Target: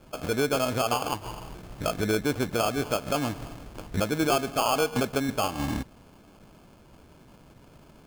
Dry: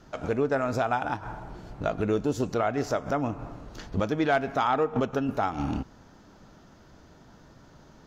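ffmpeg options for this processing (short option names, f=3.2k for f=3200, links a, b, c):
-af "acrusher=samples=23:mix=1:aa=0.000001"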